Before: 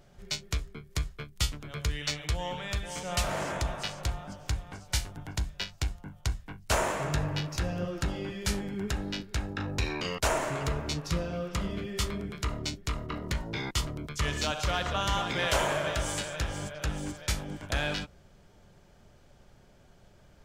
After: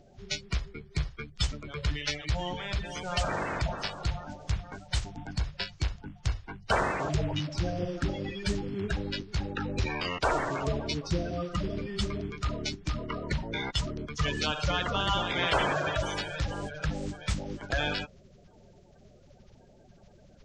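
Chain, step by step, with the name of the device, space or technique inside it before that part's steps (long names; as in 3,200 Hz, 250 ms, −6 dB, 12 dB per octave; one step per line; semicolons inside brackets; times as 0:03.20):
clip after many re-uploads (low-pass filter 6,200 Hz 24 dB per octave; spectral magnitudes quantised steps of 30 dB)
level +1.5 dB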